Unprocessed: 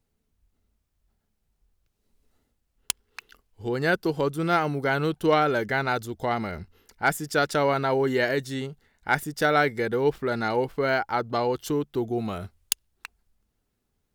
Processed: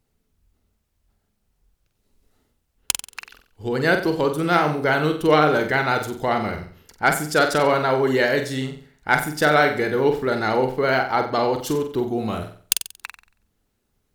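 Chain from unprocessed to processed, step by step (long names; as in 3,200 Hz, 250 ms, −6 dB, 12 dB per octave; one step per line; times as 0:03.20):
pitch vibrato 12 Hz 35 cents
flutter between parallel walls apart 7.9 metres, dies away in 0.46 s
harmonic and percussive parts rebalanced percussive +3 dB
level +2.5 dB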